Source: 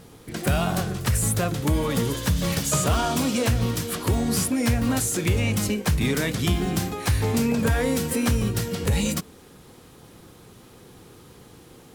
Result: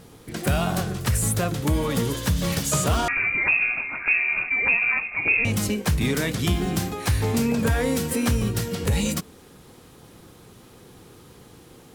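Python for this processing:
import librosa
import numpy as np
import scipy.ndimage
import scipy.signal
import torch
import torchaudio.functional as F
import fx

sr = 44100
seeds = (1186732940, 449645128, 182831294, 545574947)

y = fx.freq_invert(x, sr, carrier_hz=2600, at=(3.08, 5.45))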